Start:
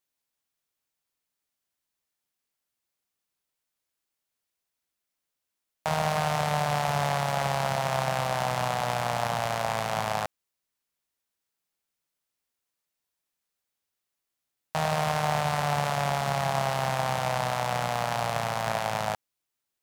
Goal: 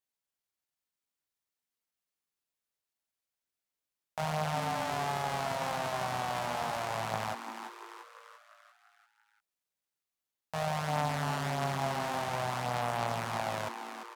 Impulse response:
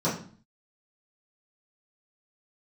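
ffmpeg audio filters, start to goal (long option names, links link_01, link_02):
-filter_complex "[0:a]flanger=delay=16.5:depth=5.2:speed=0.28,atempo=1.4,asplit=2[link_01][link_02];[link_02]asplit=6[link_03][link_04][link_05][link_06][link_07][link_08];[link_03]adelay=343,afreqshift=120,volume=-8.5dB[link_09];[link_04]adelay=686,afreqshift=240,volume=-14.2dB[link_10];[link_05]adelay=1029,afreqshift=360,volume=-19.9dB[link_11];[link_06]adelay=1372,afreqshift=480,volume=-25.5dB[link_12];[link_07]adelay=1715,afreqshift=600,volume=-31.2dB[link_13];[link_08]adelay=2058,afreqshift=720,volume=-36.9dB[link_14];[link_09][link_10][link_11][link_12][link_13][link_14]amix=inputs=6:normalize=0[link_15];[link_01][link_15]amix=inputs=2:normalize=0,volume=-3.5dB"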